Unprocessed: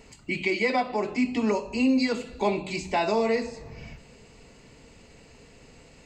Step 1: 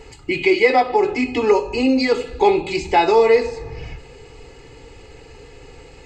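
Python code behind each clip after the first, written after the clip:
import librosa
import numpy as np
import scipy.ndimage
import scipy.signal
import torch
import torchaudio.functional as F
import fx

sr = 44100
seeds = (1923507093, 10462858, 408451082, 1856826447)

y = fx.high_shelf(x, sr, hz=5500.0, db=-9.0)
y = y + 0.83 * np.pad(y, (int(2.4 * sr / 1000.0), 0))[:len(y)]
y = y * librosa.db_to_amplitude(8.0)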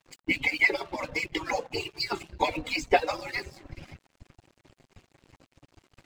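y = fx.hpss_only(x, sr, part='percussive')
y = np.sign(y) * np.maximum(np.abs(y) - 10.0 ** (-48.0 / 20.0), 0.0)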